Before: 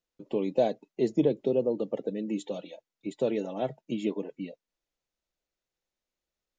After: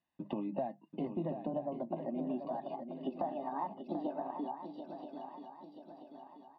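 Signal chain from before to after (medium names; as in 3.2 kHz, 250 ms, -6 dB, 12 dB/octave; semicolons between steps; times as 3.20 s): pitch bend over the whole clip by +10.5 st starting unshifted; high-pass 120 Hz; hum notches 50/100/150/200 Hz; comb 1.1 ms, depth 93%; compression 6:1, threshold -39 dBFS, peak gain reduction 18 dB; shuffle delay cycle 983 ms, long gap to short 3:1, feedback 47%, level -8.5 dB; low-pass that closes with the level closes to 2.3 kHz, closed at -40 dBFS; distance through air 410 m; trim +5 dB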